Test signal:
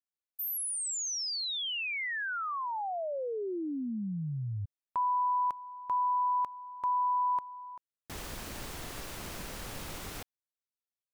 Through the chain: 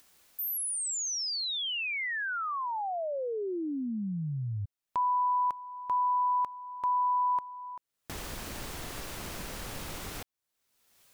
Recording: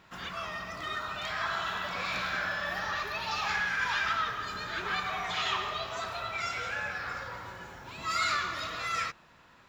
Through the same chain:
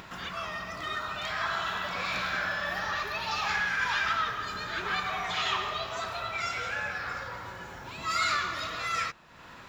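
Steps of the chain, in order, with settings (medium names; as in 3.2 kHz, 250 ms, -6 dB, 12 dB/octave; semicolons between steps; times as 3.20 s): upward compressor, threshold -39 dBFS; trim +1.5 dB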